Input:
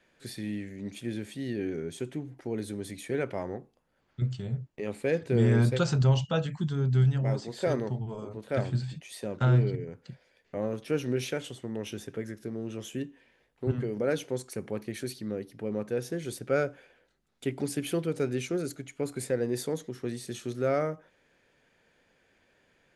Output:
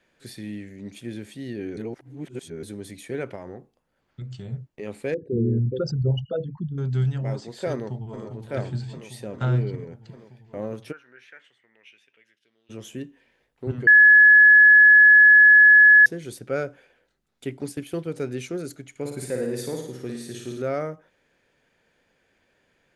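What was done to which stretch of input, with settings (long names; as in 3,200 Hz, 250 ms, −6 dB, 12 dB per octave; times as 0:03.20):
0:01.77–0:02.63: reverse
0:03.35–0:04.52: downward compressor, threshold −32 dBFS
0:05.14–0:06.78: spectral envelope exaggerated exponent 3
0:07.73–0:08.24: delay throw 400 ms, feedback 80%, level −7.5 dB
0:10.91–0:12.69: resonant band-pass 1,400 Hz → 3,500 Hz, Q 5.2
0:13.87–0:16.06: beep over 1,700 Hz −8.5 dBFS
0:17.57–0:18.15: noise gate −36 dBFS, range −8 dB
0:18.90–0:20.62: flutter between parallel walls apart 9.5 metres, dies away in 0.77 s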